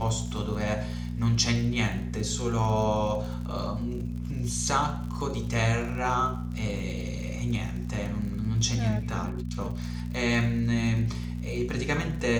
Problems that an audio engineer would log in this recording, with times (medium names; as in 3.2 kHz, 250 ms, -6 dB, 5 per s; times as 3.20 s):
crackle 60 per s -36 dBFS
hum 60 Hz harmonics 4 -33 dBFS